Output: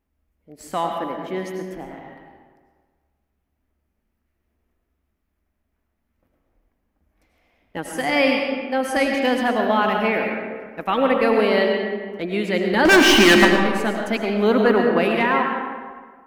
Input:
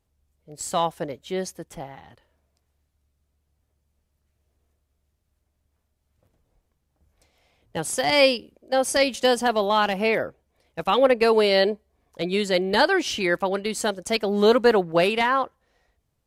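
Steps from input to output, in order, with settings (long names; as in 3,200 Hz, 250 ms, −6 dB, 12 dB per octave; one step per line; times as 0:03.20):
octave-band graphic EQ 125/250/500/2,000/4,000/8,000 Hz −11/+8/−4/+4/−7/−11 dB
0:12.85–0:13.45: leveller curve on the samples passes 5
convolution reverb RT60 1.6 s, pre-delay 60 ms, DRR 1.5 dB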